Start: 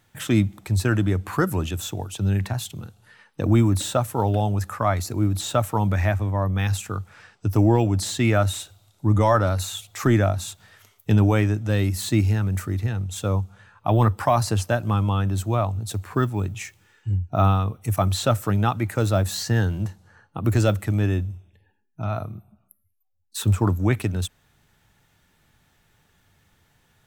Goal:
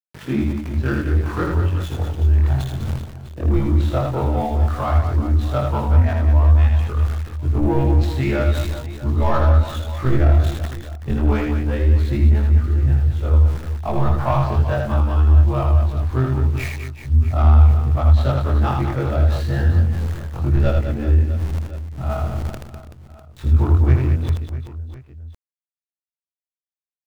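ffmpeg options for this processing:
-filter_complex "[0:a]afftfilt=real='re':imag='-im':win_size=2048:overlap=0.75,acrossover=split=230[a][b];[a]asubboost=boost=10.5:cutoff=68[c];[b]adynamicsmooth=sensitivity=3.5:basefreq=1.3k[d];[c][d]amix=inputs=2:normalize=0,lowpass=5.4k,aeval=exprs='val(0)*gte(abs(val(0)),0.00668)':c=same,areverse,acompressor=mode=upward:threshold=-19dB:ratio=2.5,areverse,asoftclip=type=tanh:threshold=-11.5dB,aecho=1:1:80|200|380|650|1055:0.631|0.398|0.251|0.158|0.1,volume=3dB"

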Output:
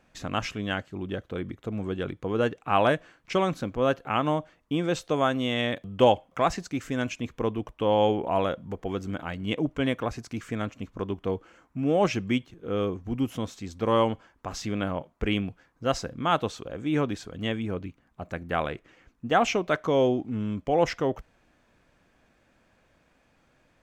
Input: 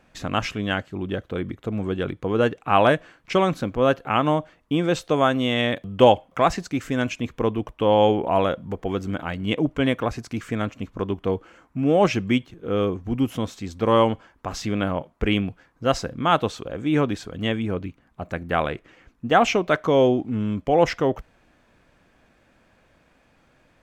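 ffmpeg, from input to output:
-af "equalizer=f=6.4k:t=o:w=0.77:g=2.5,volume=-5dB"

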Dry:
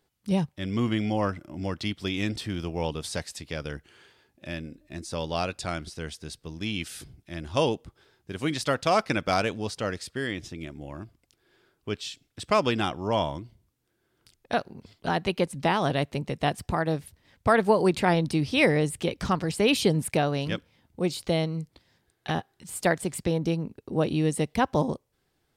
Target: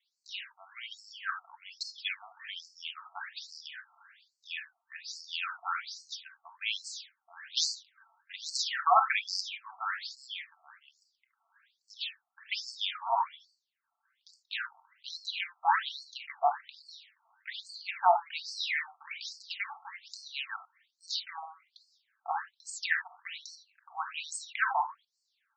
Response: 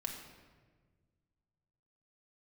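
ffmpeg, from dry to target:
-filter_complex "[0:a]asettb=1/sr,asplit=3[a][b][c];[a]atrim=end=7.484[d];[b]atrim=start=7.48:end=8.58,asetpts=PTS-STARTPTS,afade=t=in:d=0.004:c=qsin,afade=t=out:st=1.096:d=0.004:c=qsin,aeval=exprs='0.355*(cos(1*acos(clip(val(0)/0.355,-1,1)))-cos(1*PI/2))+0.112*(cos(8*acos(clip(val(0)/0.355,-1,1)))-cos(8*PI/2))':c=same[e];[c]atrim=start=8.576[f];[d][e]acrossfade=d=0.004:c1=hsin:c2=qsin[g];[g][f]acrossfade=d=0.004:c1=qsin:c2=hsin[h];[1:a]atrim=start_sample=2205,atrim=end_sample=3969[i];[h][i]afir=irnorm=-1:irlink=0,afftfilt=real='re*between(b*sr/1024,950*pow(6000/950,0.5+0.5*sin(2*PI*1.2*pts/sr))/1.41,950*pow(6000/950,0.5+0.5*sin(2*PI*1.2*pts/sr))*1.41)':imag='im*between(b*sr/1024,950*pow(6000/950,0.5+0.5*sin(2*PI*1.2*pts/sr))/1.41,950*pow(6000/950,0.5+0.5*sin(2*PI*1.2*pts/sr))*1.41)':win_size=1024:overlap=0.75,volume=5dB"

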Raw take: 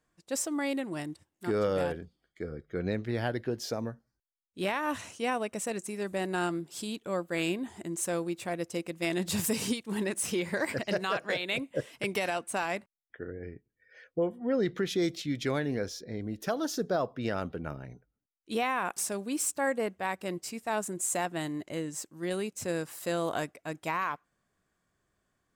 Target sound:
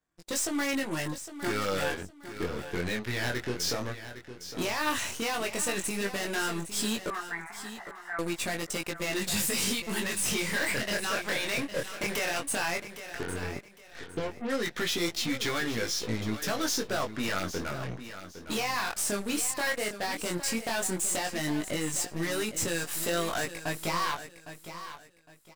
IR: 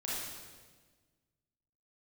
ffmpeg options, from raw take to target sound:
-filter_complex "[0:a]acrossover=split=1300[a][b];[a]acompressor=threshold=-41dB:ratio=10[c];[b]alimiter=level_in=5.5dB:limit=-24dB:level=0:latency=1:release=24,volume=-5.5dB[d];[c][d]amix=inputs=2:normalize=0,aeval=exprs='0.0562*sin(PI/2*2.51*val(0)/0.0562)':c=same,aeval=exprs='0.0562*(cos(1*acos(clip(val(0)/0.0562,-1,1)))-cos(1*PI/2))+0.00708*(cos(7*acos(clip(val(0)/0.0562,-1,1)))-cos(7*PI/2))+0.00501*(cos(8*acos(clip(val(0)/0.0562,-1,1)))-cos(8*PI/2))':c=same,flanger=delay=17.5:depth=6.9:speed=0.13,asettb=1/sr,asplit=3[e][f][g];[e]atrim=end=7.104[h];[f]atrim=start=7.1:end=8.19,asetpts=PTS-STARTPTS,afade=t=in:d=0.004:c=qsin,afade=t=out:st=1.086:d=0.004:c=qsin,asuperpass=centerf=1200:order=20:qfactor=0.84[i];[g]atrim=start=8.186[j];[h][i]acrossfade=d=0.004:c1=hsin:c2=qsin[k];[k][j]acrossfade=d=0.004:c1=qsin:c2=hsin,aecho=1:1:809|1618|2427:0.251|0.0678|0.0183,volume=3dB"

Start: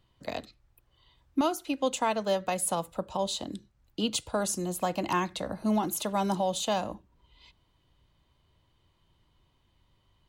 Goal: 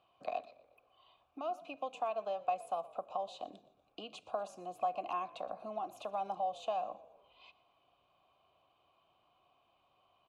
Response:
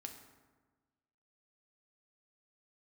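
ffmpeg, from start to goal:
-filter_complex "[0:a]acompressor=threshold=-44dB:ratio=3,asplit=3[a][b][c];[a]bandpass=f=730:t=q:w=8,volume=0dB[d];[b]bandpass=f=1.09k:t=q:w=8,volume=-6dB[e];[c]bandpass=f=2.44k:t=q:w=8,volume=-9dB[f];[d][e][f]amix=inputs=3:normalize=0,asplit=5[g][h][i][j][k];[h]adelay=120,afreqshift=-49,volume=-20.5dB[l];[i]adelay=240,afreqshift=-98,volume=-26.9dB[m];[j]adelay=360,afreqshift=-147,volume=-33.3dB[n];[k]adelay=480,afreqshift=-196,volume=-39.6dB[o];[g][l][m][n][o]amix=inputs=5:normalize=0,asplit=2[p][q];[1:a]atrim=start_sample=2205[r];[q][r]afir=irnorm=-1:irlink=0,volume=-11.5dB[s];[p][s]amix=inputs=2:normalize=0,volume=12.5dB"

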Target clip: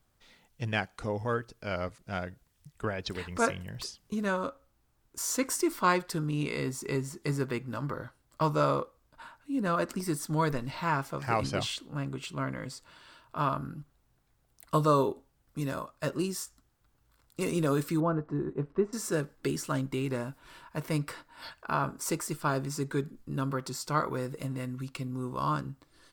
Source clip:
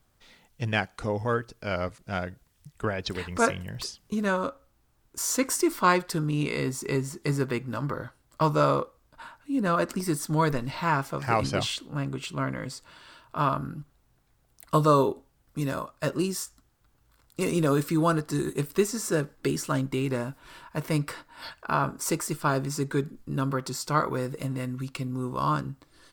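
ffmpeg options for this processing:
-filter_complex "[0:a]asettb=1/sr,asplit=3[a][b][c];[a]atrim=end=18.004[d];[b]atrim=start=18:end=18.93,asetpts=PTS-STARTPTS,afade=t=in:d=0.004:c=qsin,afade=t=out:st=0.926:d=0.004:c=qsin,lowpass=1.1k[e];[c]atrim=start=18.926[f];[d][e]acrossfade=d=0.004:c1=hsin:c2=qsin[g];[g][f]acrossfade=d=0.004:c1=qsin:c2=hsin,volume=-4dB"

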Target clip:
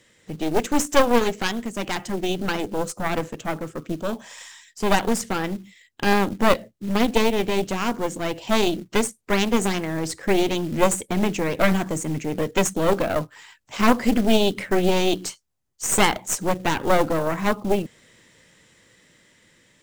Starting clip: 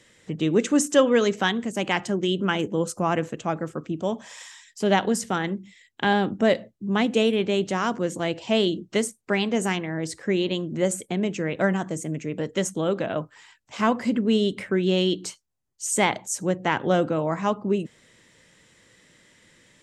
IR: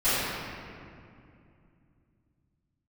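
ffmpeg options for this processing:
-af "aeval=exprs='0.501*(cos(1*acos(clip(val(0)/0.501,-1,1)))-cos(1*PI/2))+0.00891*(cos(3*acos(clip(val(0)/0.501,-1,1)))-cos(3*PI/2))+0.2*(cos(4*acos(clip(val(0)/0.501,-1,1)))-cos(4*PI/2))+0.0112*(cos(6*acos(clip(val(0)/0.501,-1,1)))-cos(6*PI/2))':c=same,acrusher=bits=5:mode=log:mix=0:aa=0.000001,dynaudnorm=f=960:g=5:m=11.5dB,volume=-1dB"

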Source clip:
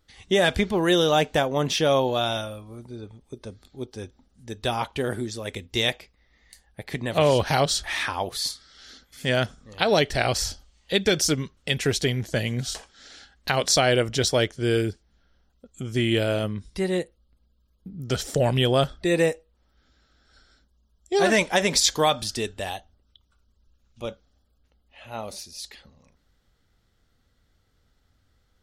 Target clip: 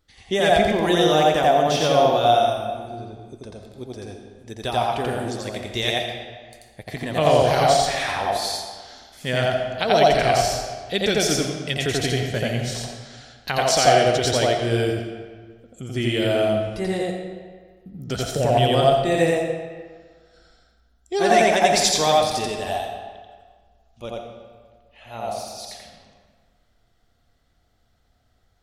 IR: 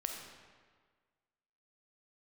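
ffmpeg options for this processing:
-filter_complex "[0:a]asplit=2[a][b];[b]equalizer=f=710:t=o:w=0.23:g=14.5[c];[1:a]atrim=start_sample=2205,adelay=86[d];[c][d]afir=irnorm=-1:irlink=0,volume=0.5dB[e];[a][e]amix=inputs=2:normalize=0,volume=-2dB"

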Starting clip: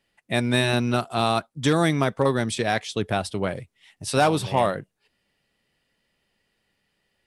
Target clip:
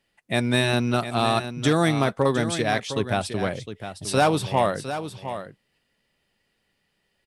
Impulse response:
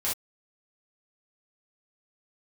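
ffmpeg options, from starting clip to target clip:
-af "aecho=1:1:709:0.299"

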